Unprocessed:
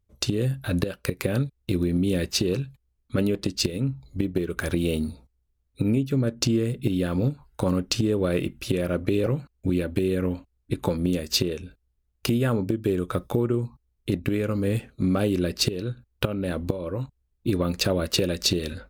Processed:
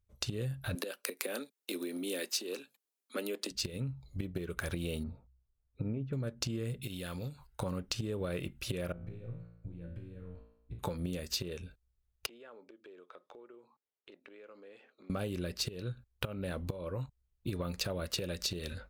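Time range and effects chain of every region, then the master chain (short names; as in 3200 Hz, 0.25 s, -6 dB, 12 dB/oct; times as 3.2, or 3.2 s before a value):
0.75–3.51 steep high-pass 240 Hz 48 dB/oct + high shelf 4800 Hz +9 dB
5.03–6.13 LPF 1400 Hz + de-hum 63.88 Hz, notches 2
6.81–7.47 high shelf 2100 Hz +12 dB + compressor 2:1, threshold -36 dBFS
8.92–10.79 compressor 5:1, threshold -32 dBFS + RIAA curve playback + resonator 57 Hz, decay 0.82 s, mix 90%
12.26–15.1 HPF 330 Hz 24 dB/oct + compressor 2.5:1, threshold -50 dBFS + air absorption 160 m
whole clip: bell 290 Hz -7.5 dB 0.99 oct; compressor 4:1, threshold -28 dBFS; gain -5 dB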